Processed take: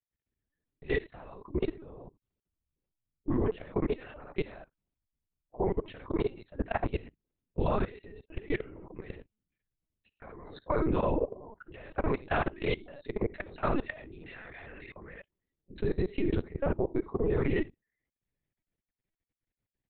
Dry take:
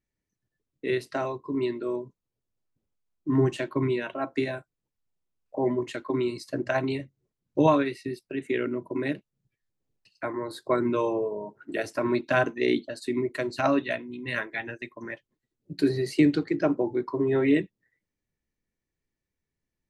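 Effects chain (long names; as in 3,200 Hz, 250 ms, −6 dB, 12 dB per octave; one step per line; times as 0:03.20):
ambience of single reflections 47 ms −12.5 dB, 67 ms −9 dB
in parallel at +1 dB: brickwall limiter −18 dBFS, peak gain reduction 9.5 dB
on the sum: random phases in short frames
linear-prediction vocoder at 8 kHz pitch kept
output level in coarse steps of 20 dB
level −7 dB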